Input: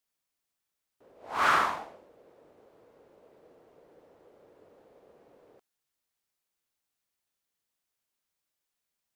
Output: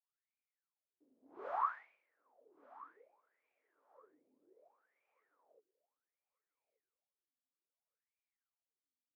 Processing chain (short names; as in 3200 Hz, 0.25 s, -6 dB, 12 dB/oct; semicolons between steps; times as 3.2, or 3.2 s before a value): wah 0.64 Hz 250–2400 Hz, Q 16; thinning echo 1.181 s, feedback 18%, high-pass 220 Hz, level -19 dB; gain +2 dB